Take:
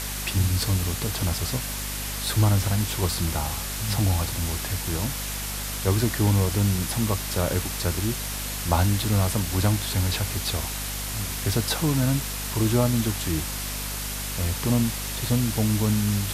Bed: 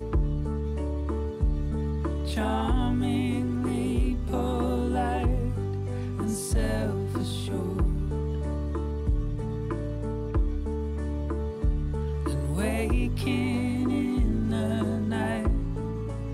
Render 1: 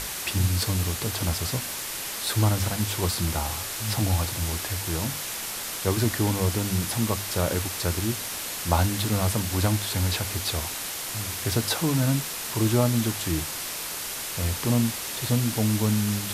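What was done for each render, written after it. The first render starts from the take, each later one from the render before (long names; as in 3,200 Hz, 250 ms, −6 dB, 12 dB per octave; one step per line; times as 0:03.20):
mains-hum notches 50/100/150/200/250 Hz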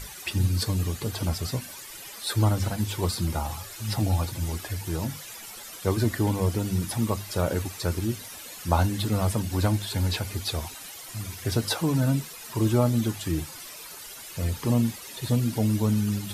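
broadband denoise 13 dB, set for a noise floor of −33 dBFS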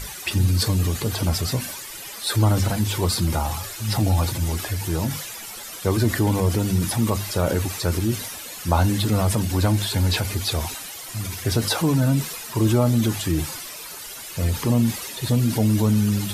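in parallel at −1.5 dB: brickwall limiter −18 dBFS, peak gain reduction 10 dB
on the sum: transient designer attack 0 dB, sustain +4 dB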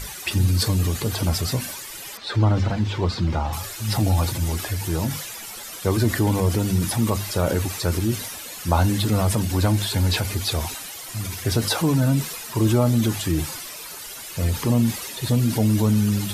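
0:02.17–0:03.53: high-frequency loss of the air 170 metres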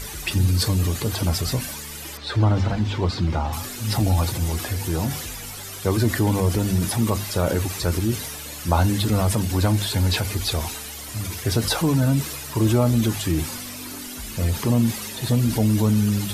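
mix in bed −13.5 dB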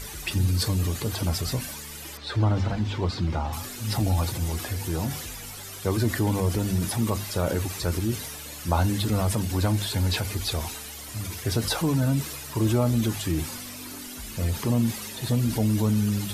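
level −4 dB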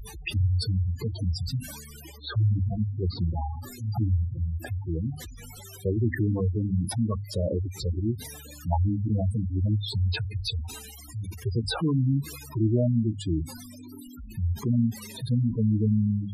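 gate on every frequency bin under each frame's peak −10 dB strong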